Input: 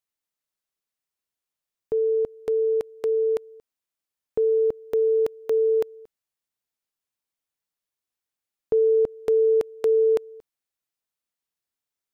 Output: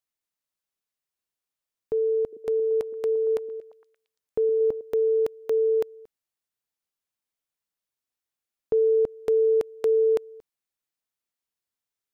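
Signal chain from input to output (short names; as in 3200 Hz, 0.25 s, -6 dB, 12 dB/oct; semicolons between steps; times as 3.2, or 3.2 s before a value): 2.21–4.81 delay with a stepping band-pass 0.115 s, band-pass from 290 Hz, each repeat 0.7 oct, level -10 dB; gain -1.5 dB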